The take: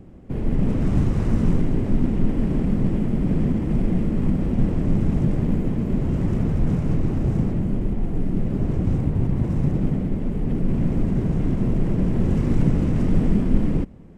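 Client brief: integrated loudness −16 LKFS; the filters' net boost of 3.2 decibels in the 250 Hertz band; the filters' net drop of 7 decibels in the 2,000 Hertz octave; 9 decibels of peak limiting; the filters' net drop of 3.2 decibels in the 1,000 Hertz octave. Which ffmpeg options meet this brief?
ffmpeg -i in.wav -af "equalizer=frequency=250:width_type=o:gain=4.5,equalizer=frequency=1000:width_type=o:gain=-3,equalizer=frequency=2000:width_type=o:gain=-8,volume=6dB,alimiter=limit=-5.5dB:level=0:latency=1" out.wav

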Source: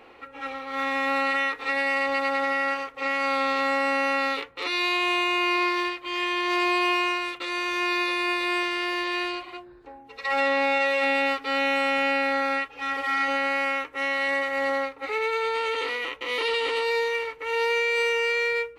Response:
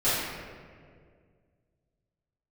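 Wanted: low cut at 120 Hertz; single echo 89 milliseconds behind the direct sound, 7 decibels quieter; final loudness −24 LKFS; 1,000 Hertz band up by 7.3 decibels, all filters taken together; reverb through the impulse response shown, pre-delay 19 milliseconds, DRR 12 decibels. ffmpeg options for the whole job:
-filter_complex "[0:a]highpass=120,equalizer=frequency=1000:width_type=o:gain=9,aecho=1:1:89:0.447,asplit=2[link_01][link_02];[1:a]atrim=start_sample=2205,adelay=19[link_03];[link_02][link_03]afir=irnorm=-1:irlink=0,volume=-26dB[link_04];[link_01][link_04]amix=inputs=2:normalize=0,volume=-4dB"

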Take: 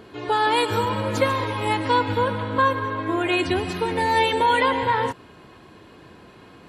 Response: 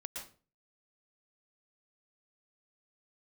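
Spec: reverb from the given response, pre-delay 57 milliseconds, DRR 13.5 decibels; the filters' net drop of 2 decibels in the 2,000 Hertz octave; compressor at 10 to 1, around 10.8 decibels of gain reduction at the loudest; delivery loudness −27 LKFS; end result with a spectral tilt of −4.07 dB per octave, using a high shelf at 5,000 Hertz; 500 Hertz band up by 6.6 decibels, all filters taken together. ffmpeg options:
-filter_complex "[0:a]equalizer=frequency=500:width_type=o:gain=7.5,equalizer=frequency=2000:width_type=o:gain=-4,highshelf=frequency=5000:gain=6.5,acompressor=threshold=-20dB:ratio=10,asplit=2[link_01][link_02];[1:a]atrim=start_sample=2205,adelay=57[link_03];[link_02][link_03]afir=irnorm=-1:irlink=0,volume=-12dB[link_04];[link_01][link_04]amix=inputs=2:normalize=0,volume=-2.5dB"

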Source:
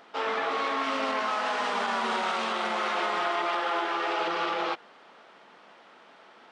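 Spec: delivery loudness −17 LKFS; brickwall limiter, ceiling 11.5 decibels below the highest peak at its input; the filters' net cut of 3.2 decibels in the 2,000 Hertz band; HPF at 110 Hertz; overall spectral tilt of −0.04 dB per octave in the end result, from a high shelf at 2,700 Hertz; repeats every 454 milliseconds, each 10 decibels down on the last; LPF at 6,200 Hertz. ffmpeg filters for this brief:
ffmpeg -i in.wav -af "highpass=110,lowpass=6200,equalizer=frequency=2000:width_type=o:gain=-3,highshelf=frequency=2700:gain=-3,alimiter=level_in=5.5dB:limit=-24dB:level=0:latency=1,volume=-5.5dB,aecho=1:1:454|908|1362|1816:0.316|0.101|0.0324|0.0104,volume=20dB" out.wav

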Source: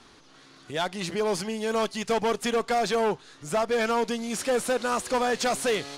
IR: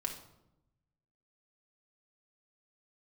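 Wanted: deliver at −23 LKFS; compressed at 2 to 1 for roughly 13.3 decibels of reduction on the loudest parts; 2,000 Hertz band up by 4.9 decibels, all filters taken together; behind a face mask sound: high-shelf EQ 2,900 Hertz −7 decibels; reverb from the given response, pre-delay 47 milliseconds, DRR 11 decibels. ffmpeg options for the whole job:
-filter_complex "[0:a]equalizer=frequency=2000:width_type=o:gain=9,acompressor=threshold=-45dB:ratio=2,asplit=2[link_01][link_02];[1:a]atrim=start_sample=2205,adelay=47[link_03];[link_02][link_03]afir=irnorm=-1:irlink=0,volume=-12dB[link_04];[link_01][link_04]amix=inputs=2:normalize=0,highshelf=frequency=2900:gain=-7,volume=15dB"

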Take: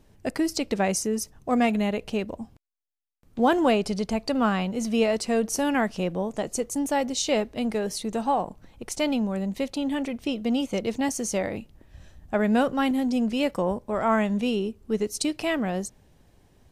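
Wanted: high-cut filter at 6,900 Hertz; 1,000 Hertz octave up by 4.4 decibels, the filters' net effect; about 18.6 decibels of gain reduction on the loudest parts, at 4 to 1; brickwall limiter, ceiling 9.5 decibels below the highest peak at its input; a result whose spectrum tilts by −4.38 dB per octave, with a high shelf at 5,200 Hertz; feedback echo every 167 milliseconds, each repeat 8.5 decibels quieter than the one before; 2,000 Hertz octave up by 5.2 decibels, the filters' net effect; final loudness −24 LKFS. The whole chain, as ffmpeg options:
ffmpeg -i in.wav -af "lowpass=6900,equalizer=frequency=1000:width_type=o:gain=5,equalizer=frequency=2000:width_type=o:gain=5.5,highshelf=frequency=5200:gain=-4,acompressor=threshold=-38dB:ratio=4,alimiter=level_in=9.5dB:limit=-24dB:level=0:latency=1,volume=-9.5dB,aecho=1:1:167|334|501|668:0.376|0.143|0.0543|0.0206,volume=18.5dB" out.wav

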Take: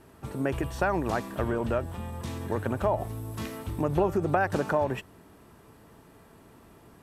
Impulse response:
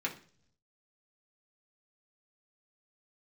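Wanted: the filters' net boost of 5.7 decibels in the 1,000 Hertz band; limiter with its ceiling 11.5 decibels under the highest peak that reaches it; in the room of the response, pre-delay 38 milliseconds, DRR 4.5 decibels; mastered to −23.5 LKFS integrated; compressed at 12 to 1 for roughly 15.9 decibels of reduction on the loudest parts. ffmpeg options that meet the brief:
-filter_complex "[0:a]equalizer=frequency=1000:width_type=o:gain=7.5,acompressor=threshold=-34dB:ratio=12,alimiter=level_in=7.5dB:limit=-24dB:level=0:latency=1,volume=-7.5dB,asplit=2[link_01][link_02];[1:a]atrim=start_sample=2205,adelay=38[link_03];[link_02][link_03]afir=irnorm=-1:irlink=0,volume=-9dB[link_04];[link_01][link_04]amix=inputs=2:normalize=0,volume=19dB"

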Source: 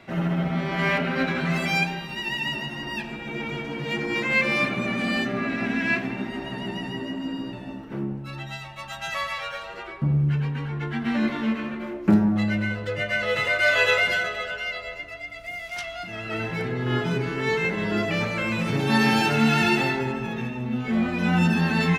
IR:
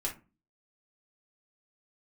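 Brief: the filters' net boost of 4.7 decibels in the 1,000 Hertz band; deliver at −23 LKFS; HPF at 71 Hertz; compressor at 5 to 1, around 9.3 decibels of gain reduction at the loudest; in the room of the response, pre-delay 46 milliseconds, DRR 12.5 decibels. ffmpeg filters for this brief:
-filter_complex "[0:a]highpass=71,equalizer=frequency=1000:width_type=o:gain=6,acompressor=threshold=-23dB:ratio=5,asplit=2[link_01][link_02];[1:a]atrim=start_sample=2205,adelay=46[link_03];[link_02][link_03]afir=irnorm=-1:irlink=0,volume=-15.5dB[link_04];[link_01][link_04]amix=inputs=2:normalize=0,volume=4.5dB"

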